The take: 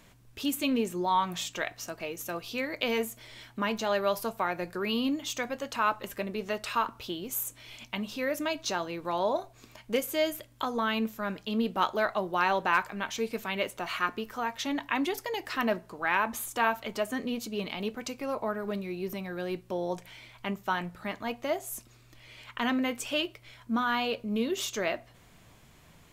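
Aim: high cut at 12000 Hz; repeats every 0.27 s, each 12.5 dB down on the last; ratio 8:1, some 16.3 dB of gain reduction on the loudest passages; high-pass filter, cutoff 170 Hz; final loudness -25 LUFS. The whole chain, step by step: HPF 170 Hz; LPF 12000 Hz; compressor 8:1, threshold -39 dBFS; feedback echo 0.27 s, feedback 24%, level -12.5 dB; gain +18 dB

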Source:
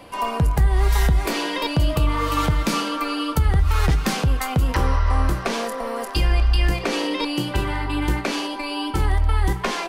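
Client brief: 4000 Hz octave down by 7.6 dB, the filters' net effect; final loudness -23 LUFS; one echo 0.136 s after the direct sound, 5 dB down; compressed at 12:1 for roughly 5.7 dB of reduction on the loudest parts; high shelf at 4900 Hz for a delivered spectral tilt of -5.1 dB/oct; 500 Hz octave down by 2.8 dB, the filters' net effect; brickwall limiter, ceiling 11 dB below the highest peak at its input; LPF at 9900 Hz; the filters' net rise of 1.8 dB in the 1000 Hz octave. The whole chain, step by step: LPF 9900 Hz; bell 500 Hz -4.5 dB; bell 1000 Hz +4 dB; bell 4000 Hz -8 dB; high shelf 4900 Hz -6.5 dB; compressor 12:1, threshold -19 dBFS; limiter -22 dBFS; echo 0.136 s -5 dB; gain +6.5 dB

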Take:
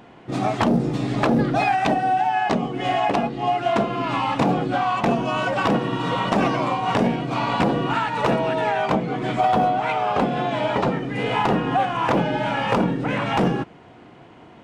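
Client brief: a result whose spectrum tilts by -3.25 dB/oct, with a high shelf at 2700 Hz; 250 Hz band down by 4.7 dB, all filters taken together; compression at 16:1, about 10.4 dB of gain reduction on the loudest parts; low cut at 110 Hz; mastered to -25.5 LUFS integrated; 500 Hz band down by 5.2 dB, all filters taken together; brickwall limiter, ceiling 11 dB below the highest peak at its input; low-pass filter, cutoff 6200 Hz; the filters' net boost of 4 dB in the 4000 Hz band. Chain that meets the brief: HPF 110 Hz; LPF 6200 Hz; bell 250 Hz -4 dB; bell 500 Hz -6.5 dB; high shelf 2700 Hz +3.5 dB; bell 4000 Hz +3.5 dB; compressor 16:1, threshold -28 dBFS; gain +10 dB; limiter -17 dBFS

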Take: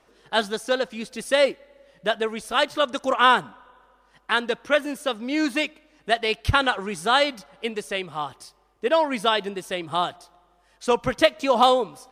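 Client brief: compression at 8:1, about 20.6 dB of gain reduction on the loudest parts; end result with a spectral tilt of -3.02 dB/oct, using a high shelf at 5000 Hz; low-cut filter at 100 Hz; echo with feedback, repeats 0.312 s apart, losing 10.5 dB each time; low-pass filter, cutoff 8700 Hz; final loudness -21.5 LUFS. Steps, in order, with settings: HPF 100 Hz; LPF 8700 Hz; high shelf 5000 Hz +5.5 dB; compressor 8:1, threshold -33 dBFS; feedback echo 0.312 s, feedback 30%, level -10.5 dB; gain +16 dB

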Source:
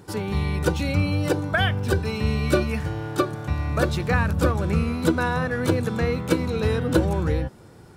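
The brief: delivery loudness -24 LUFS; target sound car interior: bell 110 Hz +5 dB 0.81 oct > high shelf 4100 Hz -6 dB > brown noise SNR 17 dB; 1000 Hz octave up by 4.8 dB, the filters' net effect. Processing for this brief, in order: bell 110 Hz +5 dB 0.81 oct; bell 1000 Hz +6.5 dB; high shelf 4100 Hz -6 dB; brown noise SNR 17 dB; gain -2 dB

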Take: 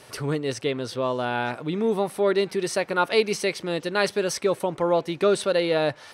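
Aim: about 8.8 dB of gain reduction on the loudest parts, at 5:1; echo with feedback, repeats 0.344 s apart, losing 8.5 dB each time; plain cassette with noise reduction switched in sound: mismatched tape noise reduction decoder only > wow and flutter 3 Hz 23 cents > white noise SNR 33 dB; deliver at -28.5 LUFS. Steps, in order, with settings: compressor 5:1, threshold -25 dBFS; feedback echo 0.344 s, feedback 38%, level -8.5 dB; mismatched tape noise reduction decoder only; wow and flutter 3 Hz 23 cents; white noise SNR 33 dB; gain +0.5 dB

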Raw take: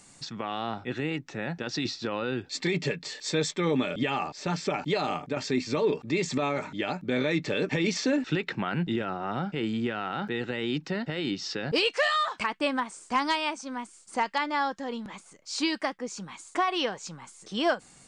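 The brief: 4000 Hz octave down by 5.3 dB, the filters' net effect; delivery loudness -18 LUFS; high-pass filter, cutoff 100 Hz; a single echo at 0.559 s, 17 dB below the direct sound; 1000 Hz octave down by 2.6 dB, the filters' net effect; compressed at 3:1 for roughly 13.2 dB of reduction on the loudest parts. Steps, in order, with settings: HPF 100 Hz; bell 1000 Hz -3 dB; bell 4000 Hz -7 dB; compressor 3:1, threshold -41 dBFS; echo 0.559 s -17 dB; gain +23.5 dB

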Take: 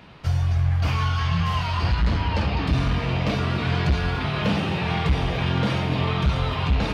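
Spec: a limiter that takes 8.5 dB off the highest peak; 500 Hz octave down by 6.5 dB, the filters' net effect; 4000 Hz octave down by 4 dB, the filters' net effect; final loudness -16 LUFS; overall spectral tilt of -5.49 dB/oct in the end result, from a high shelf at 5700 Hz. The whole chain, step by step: bell 500 Hz -8.5 dB; bell 4000 Hz -3 dB; high shelf 5700 Hz -7 dB; gain +11.5 dB; limiter -7 dBFS

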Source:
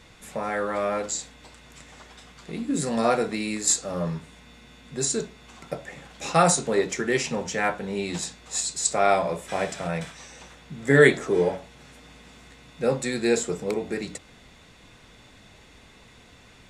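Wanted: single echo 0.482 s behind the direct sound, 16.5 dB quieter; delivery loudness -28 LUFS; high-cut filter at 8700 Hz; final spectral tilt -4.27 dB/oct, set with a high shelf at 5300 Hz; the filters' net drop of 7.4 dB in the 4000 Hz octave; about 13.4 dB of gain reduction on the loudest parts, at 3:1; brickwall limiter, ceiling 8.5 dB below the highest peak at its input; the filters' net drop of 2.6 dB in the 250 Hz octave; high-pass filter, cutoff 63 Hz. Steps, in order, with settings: HPF 63 Hz; LPF 8700 Hz; bell 250 Hz -3.5 dB; bell 4000 Hz -5 dB; high shelf 5300 Hz -8.5 dB; compressor 3:1, threshold -30 dBFS; limiter -25 dBFS; echo 0.482 s -16.5 dB; gain +8.5 dB

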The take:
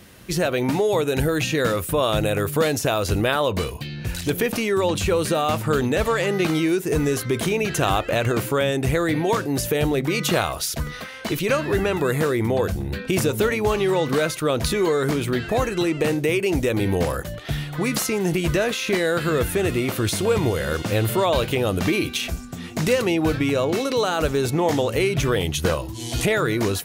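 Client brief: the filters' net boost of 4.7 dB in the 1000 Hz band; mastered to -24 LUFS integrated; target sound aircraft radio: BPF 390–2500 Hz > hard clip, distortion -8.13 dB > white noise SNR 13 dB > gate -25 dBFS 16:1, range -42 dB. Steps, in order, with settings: BPF 390–2500 Hz; bell 1000 Hz +6.5 dB; hard clip -21 dBFS; white noise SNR 13 dB; gate -25 dBFS 16:1, range -42 dB; gain +2 dB

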